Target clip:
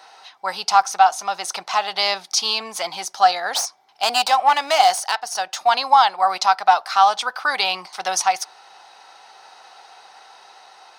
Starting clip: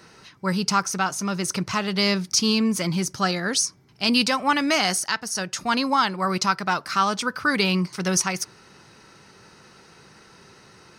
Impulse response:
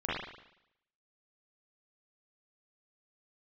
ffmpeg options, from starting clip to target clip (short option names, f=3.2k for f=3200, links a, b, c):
-filter_complex "[0:a]equalizer=f=3.6k:t=o:w=0.62:g=8.5,asettb=1/sr,asplit=3[a][b][c];[a]atrim=end=3.474[d];[b]atrim=start=3.47:end=5.61,asetpts=PTS-STARTPTS,afade=t=in:d=0.004:c=qsin,afade=t=out:st=2.136:d=0.004:c=qsin,aeval=exprs='clip(val(0),-1,0.0891)':c=same[e];[c]atrim=start=5.606[f];[d][e]acrossfade=d=0.004:c1=hsin:c2=qsin[g];[g][f]acrossfade=d=0.004:c1=qsin:c2=hsin,highpass=f=760:t=q:w=8.6,dynaudnorm=f=800:g=5:m=11.5dB,volume=-1dB"